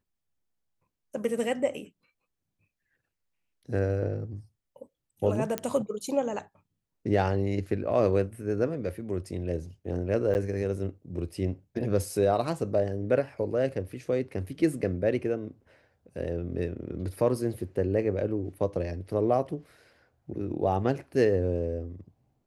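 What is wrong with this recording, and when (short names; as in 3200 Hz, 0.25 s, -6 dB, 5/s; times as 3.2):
5.58 pop -13 dBFS
10.34–10.35 gap 9.4 ms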